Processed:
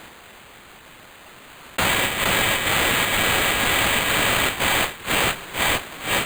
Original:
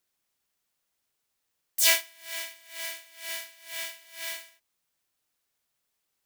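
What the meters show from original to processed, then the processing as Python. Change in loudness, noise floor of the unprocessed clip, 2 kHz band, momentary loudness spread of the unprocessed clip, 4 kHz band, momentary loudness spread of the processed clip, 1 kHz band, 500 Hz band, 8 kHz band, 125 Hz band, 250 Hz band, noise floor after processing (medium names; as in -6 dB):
+10.0 dB, -80 dBFS, +15.5 dB, 17 LU, +12.0 dB, 5 LU, +24.5 dB, +19.0 dB, +7.0 dB, no reading, +31.0 dB, -46 dBFS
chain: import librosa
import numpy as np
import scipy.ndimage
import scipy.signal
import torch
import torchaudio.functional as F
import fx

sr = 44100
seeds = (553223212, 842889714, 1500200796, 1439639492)

p1 = scipy.signal.sosfilt(scipy.signal.butter(2, 1100.0, 'highpass', fs=sr, output='sos'), x)
p2 = fx.dereverb_blind(p1, sr, rt60_s=0.93)
p3 = fx.rider(p2, sr, range_db=4, speed_s=2.0)
p4 = p3 + fx.echo_feedback(p3, sr, ms=471, feedback_pct=59, wet_db=-17.5, dry=0)
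p5 = fx.sample_hold(p4, sr, seeds[0], rate_hz=5500.0, jitter_pct=0)
p6 = fx.env_flatten(p5, sr, amount_pct=100)
y = F.gain(torch.from_numpy(p6), 1.5).numpy()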